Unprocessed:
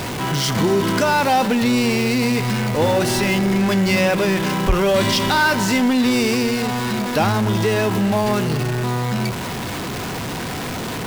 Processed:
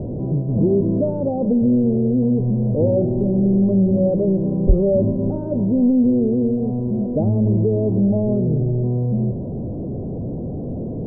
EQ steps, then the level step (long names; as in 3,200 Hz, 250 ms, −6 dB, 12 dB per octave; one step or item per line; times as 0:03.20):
elliptic low-pass filter 600 Hz, stop band 80 dB
spectral tilt −1.5 dB per octave
−1.0 dB